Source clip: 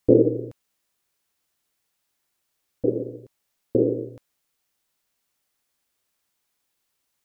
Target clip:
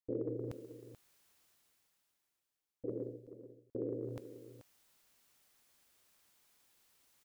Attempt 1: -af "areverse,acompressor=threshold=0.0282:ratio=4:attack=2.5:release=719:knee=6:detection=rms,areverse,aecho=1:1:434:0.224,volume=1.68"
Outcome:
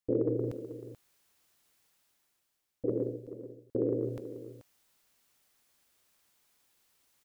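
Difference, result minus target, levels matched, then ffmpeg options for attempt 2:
compression: peak gain reduction -9 dB
-af "areverse,acompressor=threshold=0.00708:ratio=4:attack=2.5:release=719:knee=6:detection=rms,areverse,aecho=1:1:434:0.224,volume=1.68"

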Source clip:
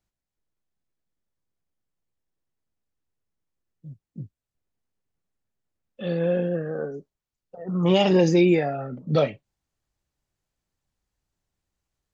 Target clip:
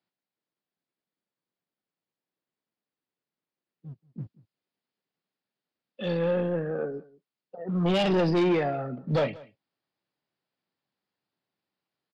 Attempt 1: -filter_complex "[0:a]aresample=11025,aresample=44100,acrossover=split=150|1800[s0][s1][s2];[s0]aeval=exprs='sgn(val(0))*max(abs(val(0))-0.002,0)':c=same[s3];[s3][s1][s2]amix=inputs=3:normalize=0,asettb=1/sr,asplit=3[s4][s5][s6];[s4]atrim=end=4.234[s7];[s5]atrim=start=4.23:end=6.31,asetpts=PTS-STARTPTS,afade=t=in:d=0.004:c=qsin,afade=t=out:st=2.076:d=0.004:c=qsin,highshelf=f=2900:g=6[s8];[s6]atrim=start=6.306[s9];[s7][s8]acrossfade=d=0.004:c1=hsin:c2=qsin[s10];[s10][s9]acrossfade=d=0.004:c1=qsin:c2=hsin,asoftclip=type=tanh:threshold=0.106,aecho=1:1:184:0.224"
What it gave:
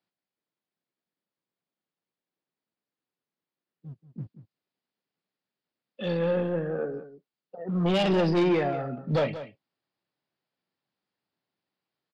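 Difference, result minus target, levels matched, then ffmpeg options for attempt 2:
echo-to-direct +5.5 dB
-filter_complex "[0:a]aresample=11025,aresample=44100,acrossover=split=150|1800[s0][s1][s2];[s0]aeval=exprs='sgn(val(0))*max(abs(val(0))-0.002,0)':c=same[s3];[s3][s1][s2]amix=inputs=3:normalize=0,asettb=1/sr,asplit=3[s4][s5][s6];[s4]atrim=end=4.234[s7];[s5]atrim=start=4.23:end=6.31,asetpts=PTS-STARTPTS,afade=t=in:d=0.004:c=qsin,afade=t=out:st=2.076:d=0.004:c=qsin,highshelf=f=2900:g=6[s8];[s6]atrim=start=6.306[s9];[s7][s8]acrossfade=d=0.004:c1=hsin:c2=qsin[s10];[s10][s9]acrossfade=d=0.004:c1=qsin:c2=hsin,asoftclip=type=tanh:threshold=0.106,aecho=1:1:184:0.0841"

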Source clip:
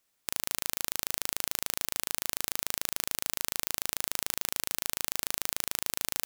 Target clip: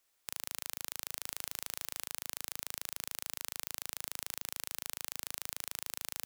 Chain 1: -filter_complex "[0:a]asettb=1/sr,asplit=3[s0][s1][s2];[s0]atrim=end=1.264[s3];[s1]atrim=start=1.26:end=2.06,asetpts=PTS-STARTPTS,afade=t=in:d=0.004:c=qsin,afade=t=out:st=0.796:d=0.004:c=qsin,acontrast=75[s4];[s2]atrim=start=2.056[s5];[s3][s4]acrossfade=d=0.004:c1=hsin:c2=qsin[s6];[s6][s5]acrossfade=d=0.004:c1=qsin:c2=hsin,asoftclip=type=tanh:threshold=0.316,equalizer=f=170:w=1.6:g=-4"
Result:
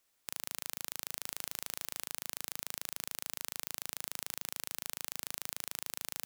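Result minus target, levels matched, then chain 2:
125 Hz band +4.0 dB
-filter_complex "[0:a]asettb=1/sr,asplit=3[s0][s1][s2];[s0]atrim=end=1.264[s3];[s1]atrim=start=1.26:end=2.06,asetpts=PTS-STARTPTS,afade=t=in:d=0.004:c=qsin,afade=t=out:st=0.796:d=0.004:c=qsin,acontrast=75[s4];[s2]atrim=start=2.056[s5];[s3][s4]acrossfade=d=0.004:c1=hsin:c2=qsin[s6];[s6][s5]acrossfade=d=0.004:c1=qsin:c2=hsin,asoftclip=type=tanh:threshold=0.316,equalizer=f=170:w=1.6:g=-15.5"

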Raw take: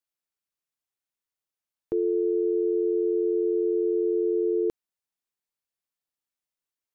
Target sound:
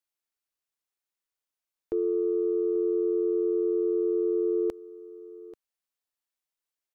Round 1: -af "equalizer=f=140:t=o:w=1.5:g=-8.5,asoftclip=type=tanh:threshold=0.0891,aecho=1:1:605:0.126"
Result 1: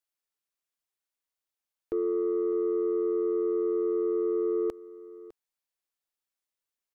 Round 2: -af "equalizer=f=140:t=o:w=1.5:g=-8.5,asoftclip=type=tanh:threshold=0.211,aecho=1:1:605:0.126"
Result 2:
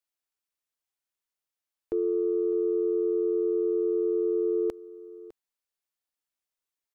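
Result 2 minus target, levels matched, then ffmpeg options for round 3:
echo 232 ms early
-af "equalizer=f=140:t=o:w=1.5:g=-8.5,asoftclip=type=tanh:threshold=0.211,aecho=1:1:837:0.126"

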